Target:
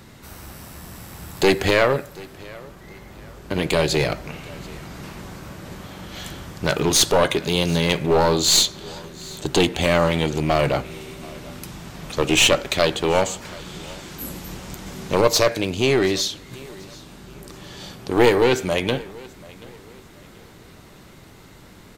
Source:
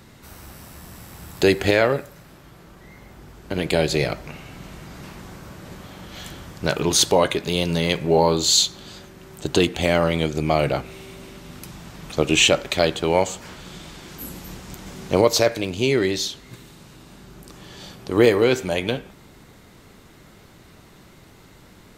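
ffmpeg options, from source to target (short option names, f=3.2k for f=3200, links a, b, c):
-filter_complex "[0:a]aeval=exprs='clip(val(0),-1,0.133)':c=same,asplit=2[a][b];[b]aecho=0:1:733|1466|2199:0.0794|0.0286|0.0103[c];[a][c]amix=inputs=2:normalize=0,volume=2.5dB"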